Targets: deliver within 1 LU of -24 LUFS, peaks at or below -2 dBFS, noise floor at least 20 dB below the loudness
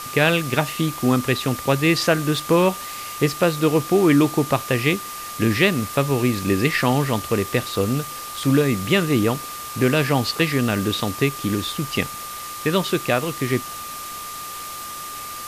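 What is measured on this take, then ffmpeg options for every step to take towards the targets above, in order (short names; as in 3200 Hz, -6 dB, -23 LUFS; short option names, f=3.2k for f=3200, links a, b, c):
steady tone 1200 Hz; tone level -33 dBFS; noise floor -33 dBFS; noise floor target -41 dBFS; loudness -21.0 LUFS; peak -4.5 dBFS; loudness target -24.0 LUFS
-> -af "bandreject=f=1.2k:w=30"
-af "afftdn=nr=8:nf=-33"
-af "volume=-3dB"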